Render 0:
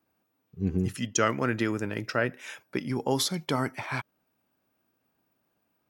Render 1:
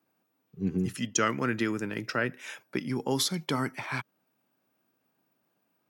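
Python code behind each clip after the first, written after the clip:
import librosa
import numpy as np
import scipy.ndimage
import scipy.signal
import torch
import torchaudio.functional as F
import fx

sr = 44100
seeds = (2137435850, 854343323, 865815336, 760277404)

y = scipy.signal.sosfilt(scipy.signal.butter(4, 120.0, 'highpass', fs=sr, output='sos'), x)
y = fx.dynamic_eq(y, sr, hz=650.0, q=1.5, threshold_db=-42.0, ratio=4.0, max_db=-6)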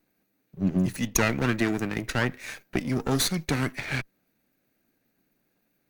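y = fx.lower_of_two(x, sr, delay_ms=0.48)
y = y * 10.0 ** (4.5 / 20.0)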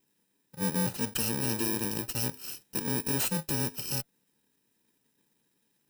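y = fx.bit_reversed(x, sr, seeds[0], block=64)
y = np.clip(10.0 ** (24.0 / 20.0) * y, -1.0, 1.0) / 10.0 ** (24.0 / 20.0)
y = fx.notch_comb(y, sr, f0_hz=1100.0)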